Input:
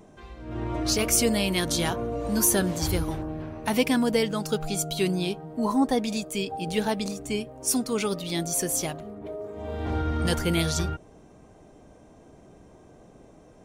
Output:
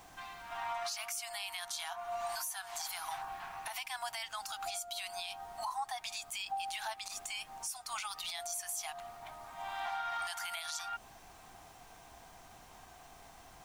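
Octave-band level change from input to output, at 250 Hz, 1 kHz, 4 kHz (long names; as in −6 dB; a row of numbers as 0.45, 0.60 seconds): below −40 dB, −5.0 dB, −9.0 dB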